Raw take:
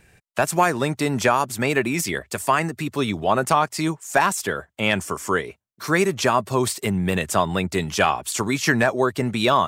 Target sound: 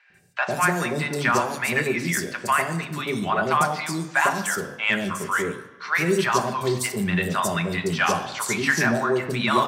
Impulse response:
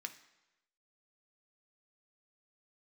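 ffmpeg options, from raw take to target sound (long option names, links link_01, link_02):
-filter_complex "[0:a]acrossover=split=730|4400[link_01][link_02][link_03];[link_01]adelay=100[link_04];[link_03]adelay=140[link_05];[link_04][link_02][link_05]amix=inputs=3:normalize=0[link_06];[1:a]atrim=start_sample=2205,asetrate=35721,aresample=44100[link_07];[link_06][link_07]afir=irnorm=-1:irlink=0,acontrast=49,volume=-3.5dB"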